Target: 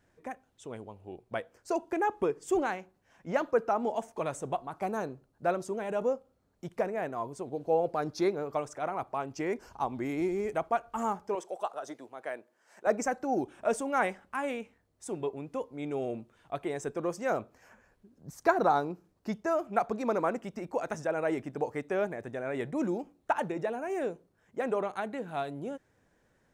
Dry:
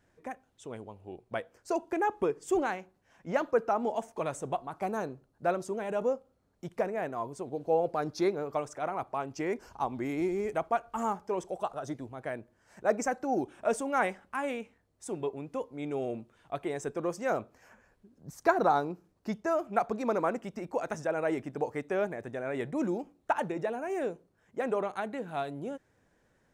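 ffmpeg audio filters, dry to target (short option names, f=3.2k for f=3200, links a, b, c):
-filter_complex "[0:a]asettb=1/sr,asplit=3[a][b][c];[a]atrim=end=11.354[d];[b]atrim=start=11.35:end=12.87,asetpts=PTS-STARTPTS,afade=t=in:d=0.004:c=qsin,afade=t=out:st=1.516:d=0.004:c=qsin,highpass=410[e];[c]atrim=start=12.866[f];[d][e]acrossfade=d=0.004:c1=hsin:c2=qsin[g];[g][f]acrossfade=d=0.004:c1=qsin:c2=hsin"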